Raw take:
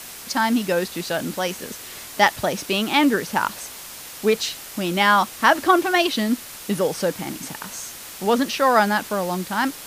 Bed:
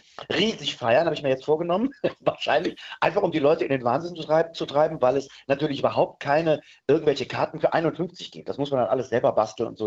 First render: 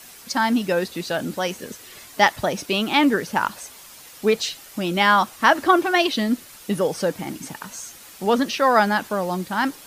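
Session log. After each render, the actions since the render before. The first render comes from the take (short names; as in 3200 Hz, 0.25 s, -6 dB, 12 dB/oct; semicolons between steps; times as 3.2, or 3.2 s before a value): denoiser 8 dB, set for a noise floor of -38 dBFS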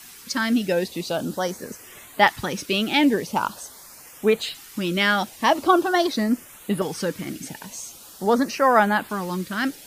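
LFO notch saw up 0.44 Hz 520–6300 Hz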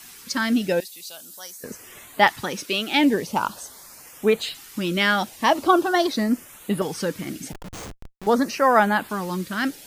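0.8–1.64 pre-emphasis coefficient 0.97; 2.37–2.93 HPF 150 Hz -> 590 Hz 6 dB/oct; 7.52–8.27 Schmitt trigger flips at -32.5 dBFS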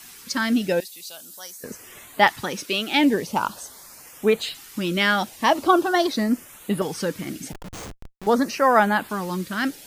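nothing audible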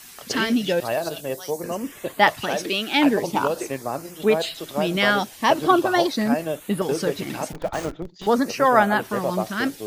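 add bed -5.5 dB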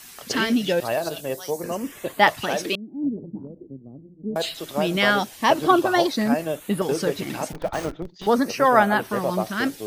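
2.75–4.36 ladder low-pass 330 Hz, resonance 25%; 7.54–9.55 notch 7100 Hz, Q 8.7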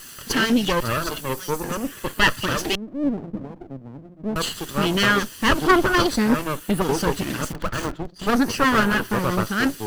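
minimum comb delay 0.65 ms; in parallel at -3 dB: soft clip -21 dBFS, distortion -10 dB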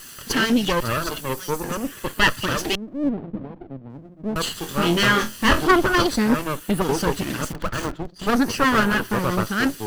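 3.09–3.9 LPF 4100 Hz 24 dB/oct; 4.59–5.65 flutter echo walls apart 4 m, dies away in 0.22 s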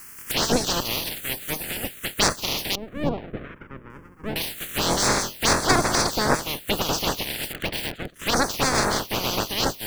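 spectral limiter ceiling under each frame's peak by 26 dB; envelope phaser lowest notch 590 Hz, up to 3000 Hz, full sweep at -15 dBFS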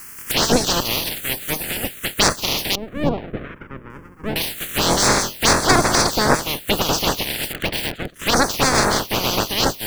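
gain +5 dB; limiter -2 dBFS, peak gain reduction 2 dB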